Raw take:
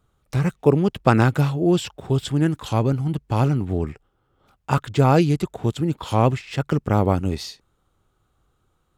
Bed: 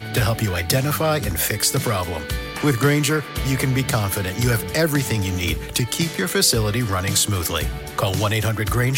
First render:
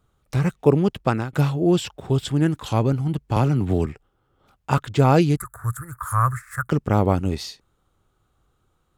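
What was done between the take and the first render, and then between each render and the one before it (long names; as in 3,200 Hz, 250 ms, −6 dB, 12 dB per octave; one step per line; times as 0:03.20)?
0:00.89–0:01.33: fade out, to −21.5 dB
0:03.36–0:03.86: multiband upward and downward compressor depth 100%
0:05.37–0:06.69: drawn EQ curve 120 Hz 0 dB, 180 Hz −23 dB, 370 Hz −24 dB, 570 Hz −15 dB, 830 Hz −15 dB, 1,200 Hz +12 dB, 1,700 Hz +9 dB, 2,800 Hz −30 dB, 5,300 Hz −14 dB, 9,400 Hz +14 dB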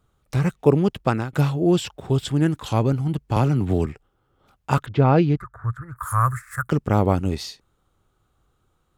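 0:04.86–0:05.96: high-frequency loss of the air 270 metres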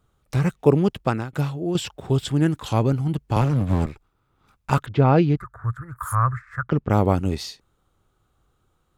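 0:00.88–0:01.75: fade out, to −8.5 dB
0:03.41–0:04.71: lower of the sound and its delayed copy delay 0.81 ms
0:06.15–0:06.90: high-frequency loss of the air 230 metres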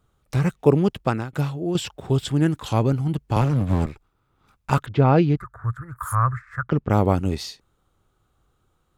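no processing that can be heard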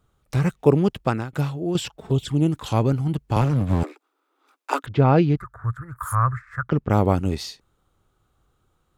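0:01.88–0:02.52: flanger swept by the level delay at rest 6.7 ms, full sweep at −17.5 dBFS
0:03.83–0:04.84: Butterworth high-pass 270 Hz 96 dB per octave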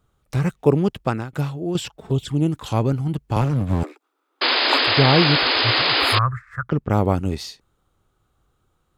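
0:04.41–0:06.19: sound drawn into the spectrogram noise 240–5,100 Hz −19 dBFS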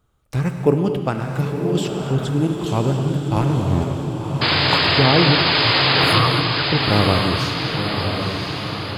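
feedback delay with all-pass diffusion 1,015 ms, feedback 58%, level −5 dB
reverb whose tail is shaped and stops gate 310 ms flat, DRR 6 dB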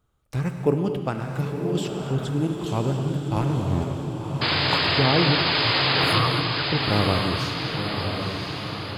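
level −5 dB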